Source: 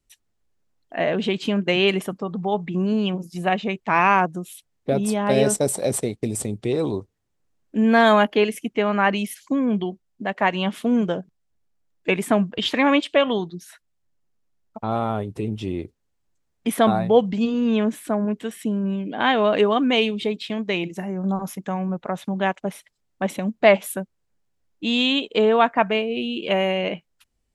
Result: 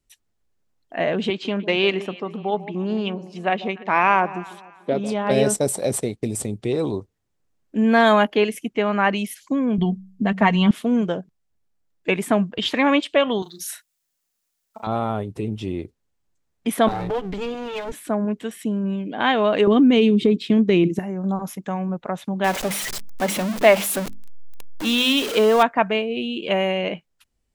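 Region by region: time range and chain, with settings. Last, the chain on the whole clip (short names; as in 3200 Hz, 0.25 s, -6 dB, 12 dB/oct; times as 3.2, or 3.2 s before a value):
1.3–5.31 BPF 220–5100 Hz + echo with dull and thin repeats by turns 0.147 s, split 930 Hz, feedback 54%, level -14 dB + Doppler distortion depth 0.1 ms
9.78–10.71 tone controls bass +13 dB, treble +2 dB + comb 4.4 ms, depth 57% + de-hum 63.19 Hz, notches 3
13.42–14.87 tilt +4.5 dB/oct + doubler 37 ms -6.5 dB
16.88–17.92 minimum comb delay 6.7 ms + compressor 4:1, threshold -22 dBFS
19.67–20.99 HPF 57 Hz + resonant low shelf 500 Hz +10 dB, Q 1.5 + compressor, threshold -11 dBFS
22.44–25.63 zero-crossing step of -22 dBFS + bell 63 Hz -12 dB 1.6 oct + notches 50/100/150/200/250/300/350 Hz
whole clip: dry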